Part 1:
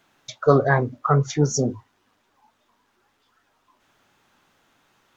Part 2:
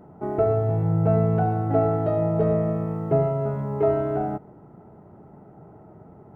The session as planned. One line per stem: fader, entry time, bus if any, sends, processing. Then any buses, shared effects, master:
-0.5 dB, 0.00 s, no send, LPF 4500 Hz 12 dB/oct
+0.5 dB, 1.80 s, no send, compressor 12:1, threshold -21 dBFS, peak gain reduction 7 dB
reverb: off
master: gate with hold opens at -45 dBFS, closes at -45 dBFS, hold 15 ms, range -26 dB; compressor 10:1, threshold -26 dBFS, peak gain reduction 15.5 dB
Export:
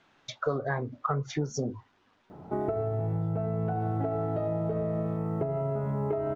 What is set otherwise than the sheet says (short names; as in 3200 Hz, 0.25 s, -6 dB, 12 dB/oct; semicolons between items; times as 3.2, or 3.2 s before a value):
stem 2: entry 1.80 s -> 2.30 s; master: missing gate with hold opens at -45 dBFS, closes at -45 dBFS, hold 15 ms, range -26 dB